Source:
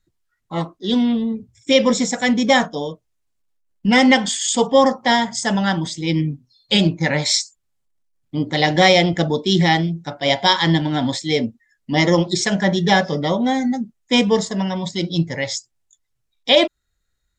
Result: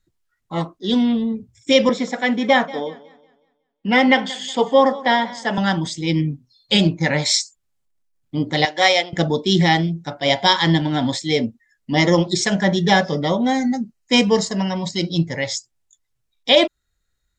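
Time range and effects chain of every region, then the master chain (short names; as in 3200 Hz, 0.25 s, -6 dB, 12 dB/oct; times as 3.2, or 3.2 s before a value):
1.89–5.58 three-band isolator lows -18 dB, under 210 Hz, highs -20 dB, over 4100 Hz + warbling echo 0.184 s, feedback 36%, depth 70 cents, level -19.5 dB
8.65–9.13 HPF 560 Hz + upward expander, over -29 dBFS
13.49–15.14 bell 4200 Hz +4.5 dB 1.4 oct + notch 3500 Hz, Q 5.9
whole clip: dry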